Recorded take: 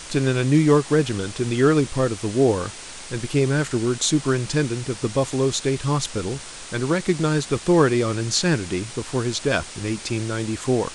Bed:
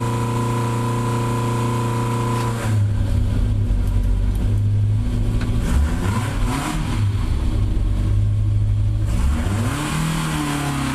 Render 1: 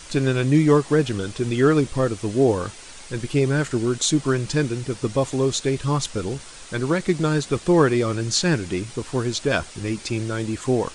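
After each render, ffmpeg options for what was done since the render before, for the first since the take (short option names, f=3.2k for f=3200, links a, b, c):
-af "afftdn=nr=6:nf=-38"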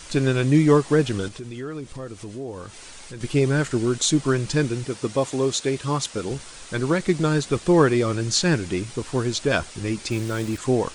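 -filter_complex "[0:a]asettb=1/sr,asplit=3[a][b][c];[a]atrim=end=1.284[d];[b]atrim=start=1.28:end=3.21,asetpts=PTS-STARTPTS,afade=t=in:d=0.004:c=qsin,afade=t=out:st=1.926:d=0.004:c=qsin,acompressor=threshold=-37dB:ratio=2.5:attack=3.2:release=140:knee=1:detection=peak[e];[c]atrim=start=3.206[f];[d][e]acrossfade=d=0.004:c1=hsin:c2=qsin[g];[g][f]acrossfade=d=0.004:c1=qsin:c2=hsin,asettb=1/sr,asplit=3[h][i][j];[h]atrim=end=4.854[k];[i]atrim=start=4.85:end=6.31,asetpts=PTS-STARTPTS,afade=t=in:d=0.004:c=qsin,afade=t=out:st=1.456:d=0.004:c=qsin,highpass=f=180:p=1[l];[j]atrim=start=6.306[m];[k][l]acrossfade=d=0.004:c1=hsin:c2=qsin[n];[n][m]acrossfade=d=0.004:c1=qsin:c2=hsin,asettb=1/sr,asplit=3[o][p][q];[o]atrim=end=10.114[r];[p]atrim=start=10.11:end=10.58,asetpts=PTS-STARTPTS,afade=t=in:d=0.004:c=qsin,afade=t=out:st=0.466:d=0.004:c=qsin,aeval=exprs='val(0)*gte(abs(val(0)),0.0178)':c=same[s];[q]atrim=start=10.576[t];[r][s]acrossfade=d=0.004:c1=hsin:c2=qsin[u];[u][t]acrossfade=d=0.004:c1=qsin:c2=hsin"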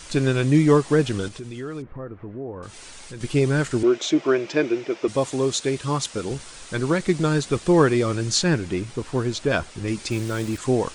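-filter_complex "[0:a]asettb=1/sr,asplit=3[a][b][c];[a]atrim=end=1.824[d];[b]atrim=start=1.82:end=2.63,asetpts=PTS-STARTPTS,afade=t=in:d=0.004:c=qsin,afade=t=out:st=0.806:d=0.004:c=qsin,lowpass=f=1.8k:w=0.5412,lowpass=f=1.8k:w=1.3066[e];[c]atrim=start=2.626[f];[d][e]acrossfade=d=0.004:c1=hsin:c2=qsin[g];[g][f]acrossfade=d=0.004:c1=qsin:c2=hsin,asettb=1/sr,asplit=3[h][i][j];[h]atrim=end=3.834[k];[i]atrim=start=3.83:end=5.08,asetpts=PTS-STARTPTS,afade=t=in:d=0.004:c=qsin,afade=t=out:st=1.246:d=0.004:c=qsin,highpass=320,equalizer=f=350:t=q:w=4:g=9,equalizer=f=630:t=q:w=4:g=9,equalizer=f=2.3k:t=q:w=4:g=6,equalizer=f=4.3k:t=q:w=4:g=-8,lowpass=f=5.3k:w=0.5412,lowpass=f=5.3k:w=1.3066[l];[j]atrim=start=5.076[m];[k][l]acrossfade=d=0.004:c1=hsin:c2=qsin[n];[n][m]acrossfade=d=0.004:c1=qsin:c2=hsin,asettb=1/sr,asplit=3[o][p][q];[o]atrim=end=8.434[r];[p]atrim=start=8.43:end=9.88,asetpts=PTS-STARTPTS,afade=t=in:d=0.004:c=qsin,afade=t=out:st=1.446:d=0.004:c=qsin,highshelf=f=3.7k:g=-6.5[s];[q]atrim=start=9.876[t];[r][s]acrossfade=d=0.004:c1=hsin:c2=qsin[u];[u][t]acrossfade=d=0.004:c1=qsin:c2=hsin"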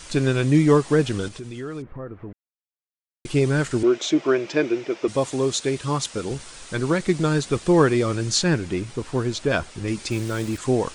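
-filter_complex "[0:a]asplit=3[a][b][c];[a]atrim=end=2.33,asetpts=PTS-STARTPTS,afade=t=out:st=2.326:d=0.004:c=hsin[d];[b]atrim=start=2.33:end=3.25,asetpts=PTS-STARTPTS,volume=0[e];[c]atrim=start=3.25,asetpts=PTS-STARTPTS,afade=t=in:d=0.004:c=hsin[f];[d][e][f]concat=n=3:v=0:a=1"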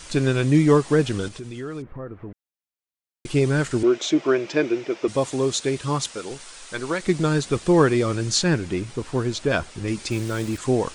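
-filter_complex "[0:a]asettb=1/sr,asplit=3[a][b][c];[a]atrim=end=6.124[d];[b]atrim=start=6.12:end=7.04,asetpts=PTS-STARTPTS,afade=t=in:d=0.004:c=qsin,afade=t=out:st=0.916:d=0.004:c=qsin,equalizer=f=82:w=0.35:g=-14[e];[c]atrim=start=7.036[f];[d][e]acrossfade=d=0.004:c1=hsin:c2=qsin[g];[g][f]acrossfade=d=0.004:c1=qsin:c2=hsin"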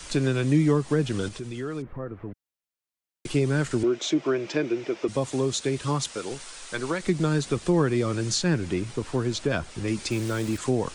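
-filter_complex "[0:a]acrossover=split=140[a][b];[a]alimiter=level_in=7.5dB:limit=-24dB:level=0:latency=1,volume=-7.5dB[c];[c][b]amix=inputs=2:normalize=0,acrossover=split=230[d][e];[e]acompressor=threshold=-26dB:ratio=2.5[f];[d][f]amix=inputs=2:normalize=0"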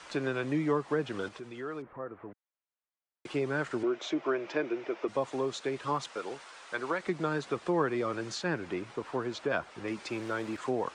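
-af "bandpass=f=1k:t=q:w=0.78:csg=0"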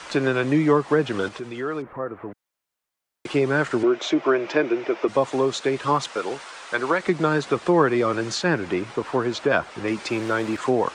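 -af "volume=10.5dB"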